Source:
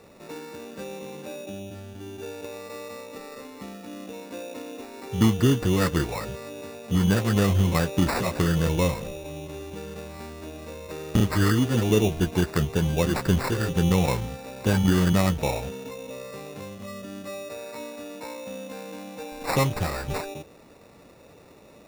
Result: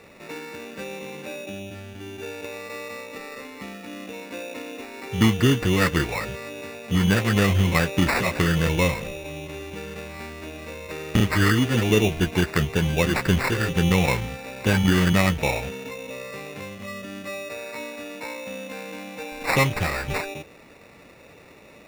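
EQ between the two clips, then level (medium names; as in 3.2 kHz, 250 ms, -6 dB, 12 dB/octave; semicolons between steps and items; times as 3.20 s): peaking EQ 2.2 kHz +9.5 dB 1 oct; +1.0 dB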